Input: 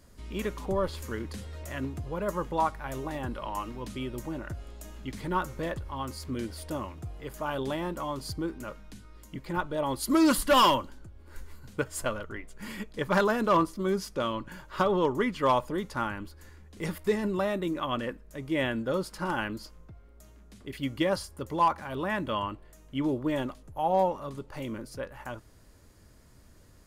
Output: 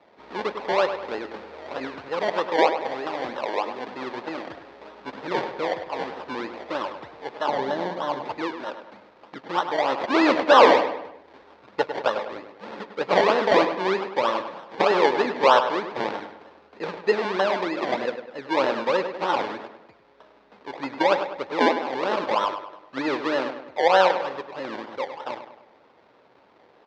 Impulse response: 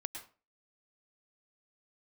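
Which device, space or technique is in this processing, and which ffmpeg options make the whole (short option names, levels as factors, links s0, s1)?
circuit-bent sampling toy: -filter_complex "[0:a]acrusher=samples=27:mix=1:aa=0.000001:lfo=1:lforange=16.2:lforate=3.2,highpass=420,equalizer=f=490:t=q:w=4:g=4,equalizer=f=870:t=q:w=4:g=4,equalizer=f=3000:t=q:w=4:g=-4,lowpass=f=4200:w=0.5412,lowpass=f=4200:w=1.3066,asettb=1/sr,asplit=3[s0][s1][s2];[s0]atrim=end=7.484[s3];[s1]atrim=start=7.48:end=8.24,asetpts=PTS-STARTPTS,afade=t=in:d=0.004:c=qsin,afade=t=out:st=0.756:d=0.004:c=qsin,equalizer=f=125:t=o:w=0.33:g=9,equalizer=f=200:t=o:w=0.33:g=9,equalizer=f=1250:t=o:w=0.33:g=-8,equalizer=f=2500:t=o:w=0.33:g=-12,equalizer=f=5000:t=o:w=0.33:g=-5,equalizer=f=8000:t=o:w=0.33:g=-8,equalizer=f=12500:t=o:w=0.33:g=11[s4];[s2]atrim=start=8.236[s5];[s3][s4]acrossfade=d=0.004:c1=hsin:c2=qsin[s6];[s6][s5]acrossfade=d=0.004:c1=qsin:c2=hsin,asplit=2[s7][s8];[s8]adelay=101,lowpass=f=3900:p=1,volume=0.355,asplit=2[s9][s10];[s10]adelay=101,lowpass=f=3900:p=1,volume=0.47,asplit=2[s11][s12];[s12]adelay=101,lowpass=f=3900:p=1,volume=0.47,asplit=2[s13][s14];[s14]adelay=101,lowpass=f=3900:p=1,volume=0.47,asplit=2[s15][s16];[s16]adelay=101,lowpass=f=3900:p=1,volume=0.47[s17];[s7][s9][s11][s13][s15][s17]amix=inputs=6:normalize=0,volume=2.24"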